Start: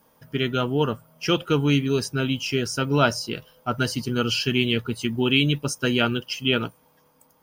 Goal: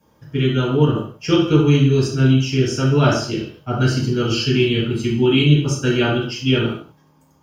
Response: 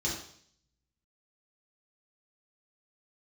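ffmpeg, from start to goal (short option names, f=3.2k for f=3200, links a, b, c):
-filter_complex "[0:a]highshelf=f=4k:g=-5.5[a];[1:a]atrim=start_sample=2205,afade=t=out:st=0.31:d=0.01,atrim=end_sample=14112[b];[a][b]afir=irnorm=-1:irlink=0,volume=-2.5dB"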